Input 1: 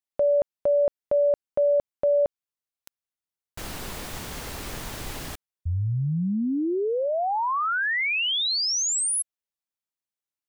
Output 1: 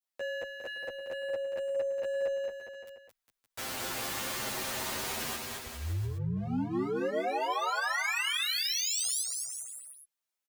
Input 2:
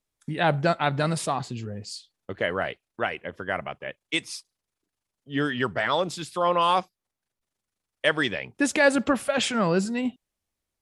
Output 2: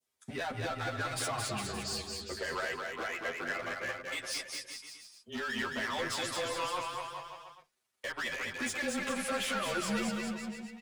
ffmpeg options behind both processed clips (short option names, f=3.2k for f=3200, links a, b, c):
-filter_complex "[0:a]highpass=f=430:p=1,adynamicequalizer=threshold=0.0112:dfrequency=1900:dqfactor=1:tfrequency=1900:tqfactor=1:attack=5:release=100:ratio=0.375:range=3.5:mode=boostabove:tftype=bell,aecho=1:1:7.4:0.46,acompressor=threshold=-25dB:ratio=20:attack=0.21:release=128:knee=6:detection=rms,asoftclip=type=hard:threshold=-33.5dB,afreqshift=-27,aecho=1:1:220|407|566|701.1|815.9:0.631|0.398|0.251|0.158|0.1,asplit=2[a][b];[b]adelay=10.2,afreqshift=0.37[c];[a][c]amix=inputs=2:normalize=1,volume=4dB"